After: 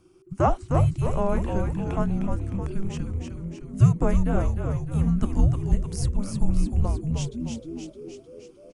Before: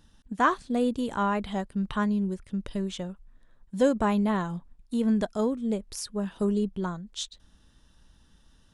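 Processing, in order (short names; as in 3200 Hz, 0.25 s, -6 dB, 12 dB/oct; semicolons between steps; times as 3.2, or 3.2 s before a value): fifteen-band EQ 160 Hz -9 dB, 400 Hz +12 dB, 4000 Hz -11 dB; frequency shift -390 Hz; frequency-shifting echo 0.307 s, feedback 58%, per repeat -86 Hz, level -5 dB; gain +1 dB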